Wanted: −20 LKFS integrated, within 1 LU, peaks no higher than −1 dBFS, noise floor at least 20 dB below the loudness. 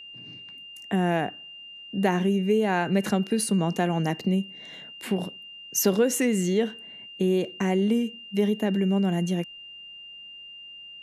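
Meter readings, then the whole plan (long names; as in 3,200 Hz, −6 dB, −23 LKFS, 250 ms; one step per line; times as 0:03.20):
interfering tone 2,800 Hz; level of the tone −41 dBFS; integrated loudness −25.5 LKFS; sample peak −9.5 dBFS; target loudness −20.0 LKFS
→ notch filter 2,800 Hz, Q 30
level +5.5 dB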